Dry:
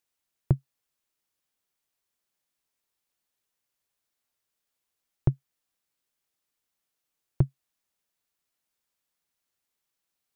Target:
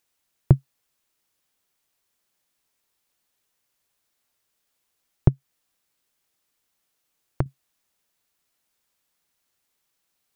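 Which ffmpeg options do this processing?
-filter_complex "[0:a]asettb=1/sr,asplit=3[s0][s1][s2];[s0]atrim=end=5.284[s3];[s1]atrim=start=5.28:end=7.46,asetpts=PTS-STARTPTS,afade=t=in:d=0.004:c=qsin,afade=t=out:st=2.176:d=0.004:c=qsin,acompressor=threshold=0.0355:ratio=6[s4];[s2]atrim=start=7.456[s5];[s3][s4]acrossfade=d=0.004:c1=hsin:c2=qsin[s6];[s6][s5]acrossfade=d=0.004:c1=qsin:c2=hsin,volume=2.37"

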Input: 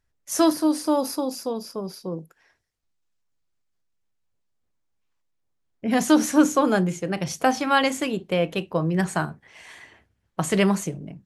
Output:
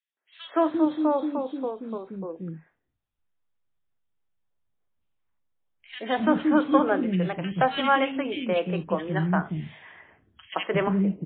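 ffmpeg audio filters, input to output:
-filter_complex "[0:a]acrossover=split=320|2400[s0][s1][s2];[s1]adelay=170[s3];[s0]adelay=350[s4];[s4][s3][s2]amix=inputs=3:normalize=0" -ar 8000 -c:a libmp3lame -b:a 16k

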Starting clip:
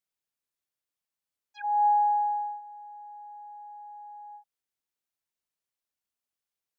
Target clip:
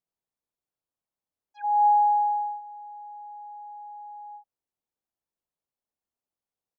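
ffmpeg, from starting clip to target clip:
-af "firequalizer=gain_entry='entry(800,0);entry(1400,-8);entry(2100,-12)':delay=0.05:min_phase=1,volume=1.5"

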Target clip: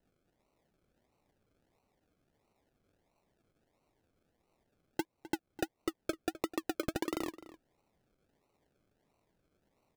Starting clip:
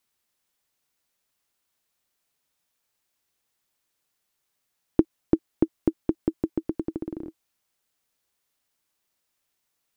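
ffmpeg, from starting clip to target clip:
-filter_complex "[0:a]acrossover=split=530 2000:gain=0.0794 1 0.0631[s0][s1][s2];[s0][s1][s2]amix=inputs=3:normalize=0,acompressor=threshold=0.00708:ratio=4,aresample=16000,asoftclip=type=hard:threshold=0.0119,aresample=44100,acrusher=samples=37:mix=1:aa=0.000001:lfo=1:lforange=22.2:lforate=1.5,asplit=2[s3][s4];[s4]adelay=256.6,volume=0.158,highshelf=f=4000:g=-5.77[s5];[s3][s5]amix=inputs=2:normalize=0,volume=5.01"

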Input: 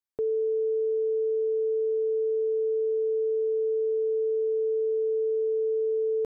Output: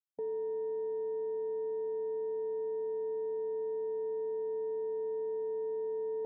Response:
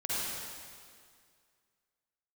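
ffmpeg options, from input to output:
-af "afwtdn=0.0316,equalizer=f=370:t=o:w=0.39:g=-11,alimiter=level_in=2.37:limit=0.0631:level=0:latency=1:release=105,volume=0.422"

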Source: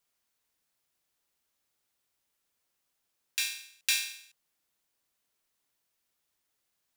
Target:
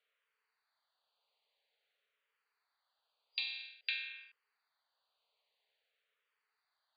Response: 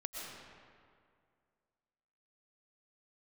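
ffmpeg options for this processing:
-filter_complex "[0:a]acompressor=threshold=0.0141:ratio=4,afftfilt=real='re*between(b*sr/4096,400,4800)':imag='im*between(b*sr/4096,400,4800)':win_size=4096:overlap=0.75,asplit=2[s0][s1];[s1]afreqshift=-0.5[s2];[s0][s2]amix=inputs=2:normalize=1,volume=1.78"

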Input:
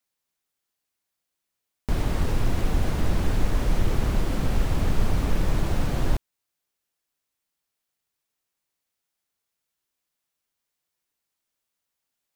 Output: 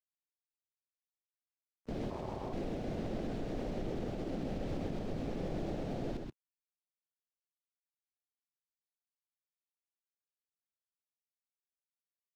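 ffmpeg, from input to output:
-filter_complex "[0:a]afwtdn=0.0355,tiltshelf=f=1300:g=-4.5,acrusher=bits=10:mix=0:aa=0.000001,acrossover=split=160 6100:gain=0.158 1 0.158[s0][s1][s2];[s0][s1][s2]amix=inputs=3:normalize=0,alimiter=level_in=3.55:limit=0.0631:level=0:latency=1:release=181,volume=0.282,aecho=1:1:129:0.596,asettb=1/sr,asplit=3[s3][s4][s5];[s3]atrim=end=2.104[s6];[s4]atrim=start=2.1:end=2.53,asetpts=PTS-STARTPTS,afade=t=in:d=0.004:c=qsin,afade=t=out:st=0.426:d=0.004:c=qsin,aeval=exprs='val(0)*sin(2*PI*380*n/s)':c=same[s7];[s5]atrim=start=2.526[s8];[s6][s7]acrossfade=d=0.004:c1=hsin:c2=qsin[s9];[s9][s8]acrossfade=d=0.004:c1=qsin:c2=hsin,volume=1.68"

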